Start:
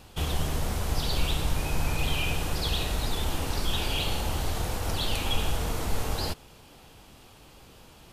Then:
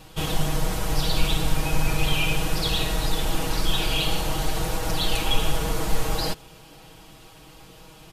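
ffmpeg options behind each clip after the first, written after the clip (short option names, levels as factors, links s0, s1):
-af "aecho=1:1:6.3:0.91,volume=1.26"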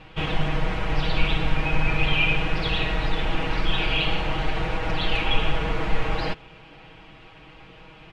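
-af "lowpass=f=2400:t=q:w=2"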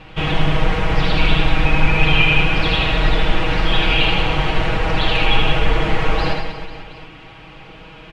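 -af "aecho=1:1:80|184|319.2|495|723.4:0.631|0.398|0.251|0.158|0.1,volume=1.88"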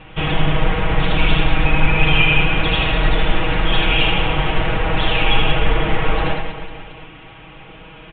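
-ar 8000 -c:a pcm_mulaw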